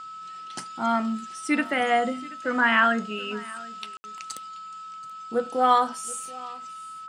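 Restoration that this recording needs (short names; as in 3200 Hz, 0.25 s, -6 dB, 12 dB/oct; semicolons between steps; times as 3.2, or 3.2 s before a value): notch 1300 Hz, Q 30; room tone fill 3.97–4.04; inverse comb 0.73 s -20.5 dB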